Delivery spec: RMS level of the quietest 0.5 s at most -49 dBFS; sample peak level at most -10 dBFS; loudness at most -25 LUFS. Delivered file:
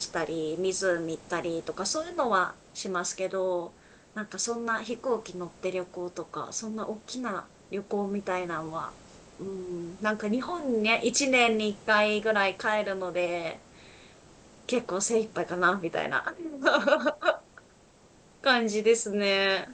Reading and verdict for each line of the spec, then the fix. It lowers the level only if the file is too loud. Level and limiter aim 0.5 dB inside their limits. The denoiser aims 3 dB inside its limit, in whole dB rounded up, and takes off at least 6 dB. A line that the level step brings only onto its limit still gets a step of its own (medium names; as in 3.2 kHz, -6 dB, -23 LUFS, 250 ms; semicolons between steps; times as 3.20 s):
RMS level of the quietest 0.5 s -58 dBFS: pass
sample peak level -8.5 dBFS: fail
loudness -28.5 LUFS: pass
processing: peak limiter -10.5 dBFS